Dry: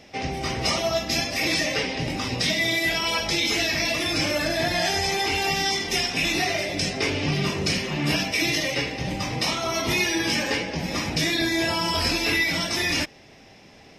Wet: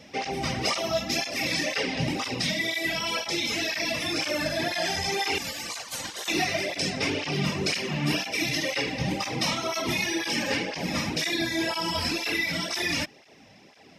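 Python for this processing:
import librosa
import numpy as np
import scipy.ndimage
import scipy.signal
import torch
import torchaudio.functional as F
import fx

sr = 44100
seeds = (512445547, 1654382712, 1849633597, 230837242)

y = fx.spec_gate(x, sr, threshold_db=-15, keep='weak', at=(5.38, 6.28))
y = fx.rider(y, sr, range_db=3, speed_s=0.5)
y = fx.flanger_cancel(y, sr, hz=2.0, depth_ms=3.0)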